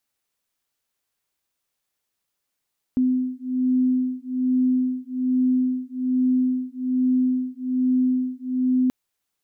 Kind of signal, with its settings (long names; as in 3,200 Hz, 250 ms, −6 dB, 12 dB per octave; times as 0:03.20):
two tones that beat 254 Hz, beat 1.2 Hz, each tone −22 dBFS 5.93 s